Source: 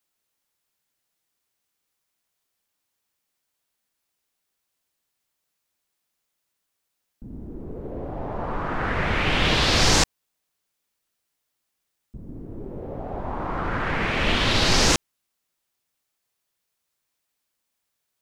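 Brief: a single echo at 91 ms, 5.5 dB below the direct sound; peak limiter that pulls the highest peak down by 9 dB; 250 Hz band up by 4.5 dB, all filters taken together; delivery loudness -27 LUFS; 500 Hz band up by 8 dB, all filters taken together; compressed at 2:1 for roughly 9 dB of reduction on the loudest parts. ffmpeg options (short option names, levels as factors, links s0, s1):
-af "equalizer=f=250:t=o:g=3,equalizer=f=500:t=o:g=9,acompressor=threshold=0.0355:ratio=2,alimiter=limit=0.0891:level=0:latency=1,aecho=1:1:91:0.531,volume=1.5"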